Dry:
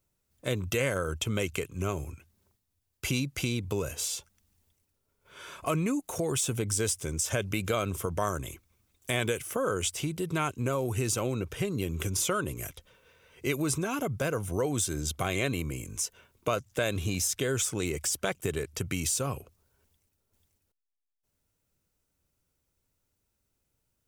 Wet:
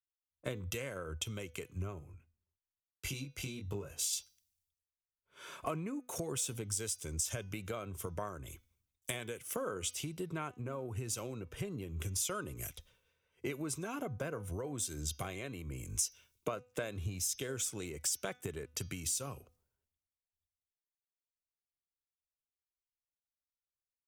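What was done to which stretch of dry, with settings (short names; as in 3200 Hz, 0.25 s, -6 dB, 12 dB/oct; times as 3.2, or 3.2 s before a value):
1.99–4.13 chorus 1.1 Hz, delay 20 ms, depth 2.9 ms
whole clip: compressor 12:1, threshold -38 dBFS; de-hum 248.5 Hz, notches 26; three-band expander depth 100%; gain +1 dB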